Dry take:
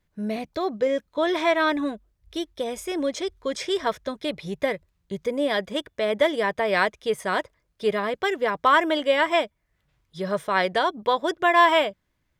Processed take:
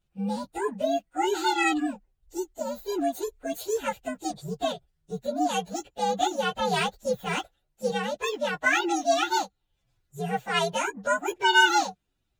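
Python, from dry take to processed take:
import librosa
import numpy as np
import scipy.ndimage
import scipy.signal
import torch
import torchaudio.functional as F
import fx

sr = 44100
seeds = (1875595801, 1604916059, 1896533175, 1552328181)

y = fx.partial_stretch(x, sr, pct=127)
y = fx.low_shelf(y, sr, hz=150.0, db=9.5, at=(6.54, 7.4))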